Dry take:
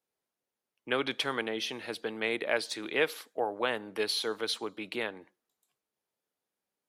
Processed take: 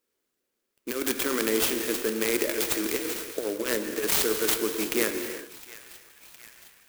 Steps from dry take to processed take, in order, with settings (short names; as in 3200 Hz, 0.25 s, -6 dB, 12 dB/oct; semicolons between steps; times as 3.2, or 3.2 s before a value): negative-ratio compressor -32 dBFS, ratio -0.5; fixed phaser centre 330 Hz, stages 4; narrowing echo 0.712 s, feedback 71%, band-pass 2400 Hz, level -17 dB; non-linear reverb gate 0.38 s flat, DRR 5.5 dB; clock jitter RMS 0.078 ms; gain +8.5 dB